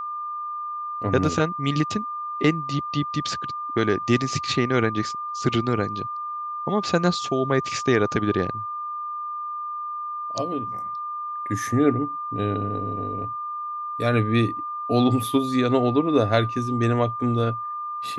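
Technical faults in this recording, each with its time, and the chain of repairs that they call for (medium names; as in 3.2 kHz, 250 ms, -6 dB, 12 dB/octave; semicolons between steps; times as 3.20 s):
whine 1.2 kHz -28 dBFS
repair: band-stop 1.2 kHz, Q 30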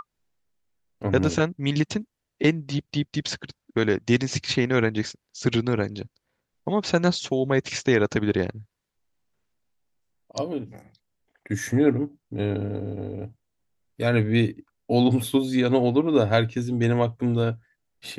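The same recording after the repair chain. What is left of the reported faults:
nothing left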